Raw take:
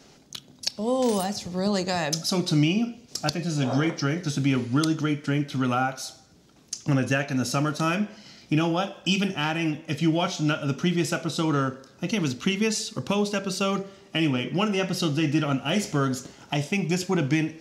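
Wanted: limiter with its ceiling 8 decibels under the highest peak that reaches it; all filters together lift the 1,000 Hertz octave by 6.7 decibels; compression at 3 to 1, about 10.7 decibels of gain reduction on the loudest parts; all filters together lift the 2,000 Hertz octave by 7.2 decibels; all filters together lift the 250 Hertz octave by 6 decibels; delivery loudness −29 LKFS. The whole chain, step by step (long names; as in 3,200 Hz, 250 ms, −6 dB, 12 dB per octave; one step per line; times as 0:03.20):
parametric band 250 Hz +7.5 dB
parametric band 1,000 Hz +6.5 dB
parametric band 2,000 Hz +7.5 dB
downward compressor 3 to 1, threshold −28 dBFS
level +2 dB
brickwall limiter −18 dBFS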